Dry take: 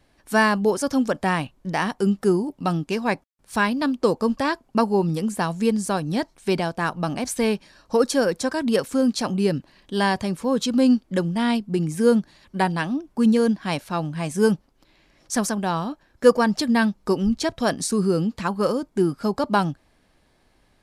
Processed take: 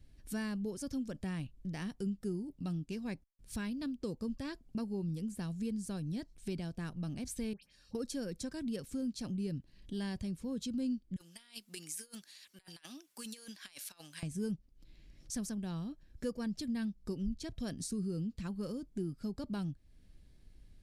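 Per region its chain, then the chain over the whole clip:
0:07.53–0:07.95: low-shelf EQ 380 Hz −11.5 dB + notch comb filter 330 Hz + all-pass dispersion highs, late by 97 ms, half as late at 1,900 Hz
0:11.16–0:14.23: high-pass filter 1,200 Hz + compressor whose output falls as the input rises −39 dBFS, ratio −0.5 + high-shelf EQ 7,200 Hz +10 dB
whole clip: guitar amp tone stack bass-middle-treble 10-0-1; downward compressor 2 to 1, threshold −58 dBFS; level +13.5 dB

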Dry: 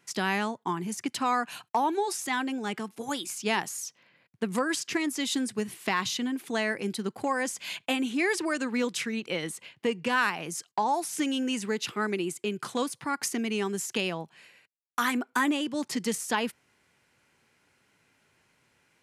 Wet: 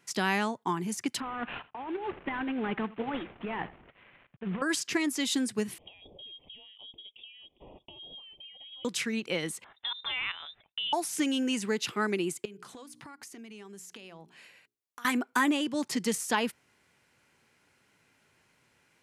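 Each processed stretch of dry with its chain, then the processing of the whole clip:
0:01.20–0:04.62: variable-slope delta modulation 16 kbit/s + compressor whose output falls as the input rises −34 dBFS + single-tap delay 82 ms −19.5 dB
0:05.78–0:08.85: downward compressor 10 to 1, threshold −41 dBFS + voice inversion scrambler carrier 3,500 Hz + Butterworth band-reject 1,500 Hz, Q 0.58
0:09.64–0:10.93: output level in coarse steps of 11 dB + voice inversion scrambler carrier 3,800 Hz
0:12.45–0:15.05: mains-hum notches 60/120/180/240/300/360/420 Hz + downward compressor 8 to 1, threshold −44 dBFS
whole clip: no processing

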